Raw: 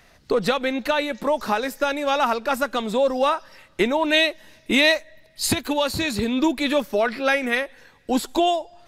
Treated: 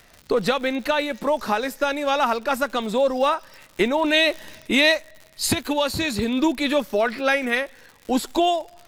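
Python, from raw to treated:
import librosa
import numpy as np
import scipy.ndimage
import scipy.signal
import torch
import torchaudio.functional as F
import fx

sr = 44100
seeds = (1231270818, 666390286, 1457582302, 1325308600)

y = fx.dmg_crackle(x, sr, seeds[0], per_s=110.0, level_db=-33.0)
y = fx.transient(y, sr, attack_db=-1, sustain_db=7, at=(3.96, 4.78))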